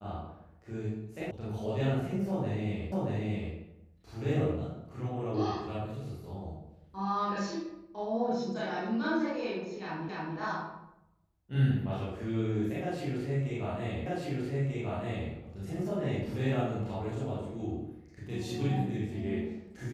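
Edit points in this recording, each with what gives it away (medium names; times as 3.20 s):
1.31 s: sound stops dead
2.92 s: repeat of the last 0.63 s
10.09 s: repeat of the last 0.28 s
14.06 s: repeat of the last 1.24 s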